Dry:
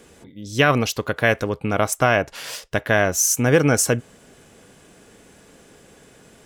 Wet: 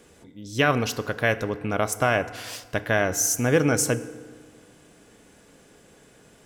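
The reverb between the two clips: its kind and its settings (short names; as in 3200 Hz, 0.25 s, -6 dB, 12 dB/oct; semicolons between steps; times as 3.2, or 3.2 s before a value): FDN reverb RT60 1.6 s, low-frequency decay 1.1×, high-frequency decay 0.55×, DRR 12.5 dB; gain -4.5 dB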